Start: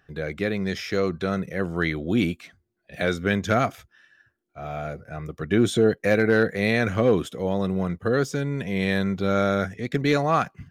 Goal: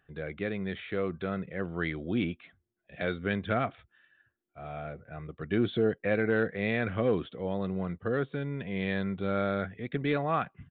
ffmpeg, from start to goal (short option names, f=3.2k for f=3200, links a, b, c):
-af "aresample=8000,aresample=44100,volume=-7.5dB"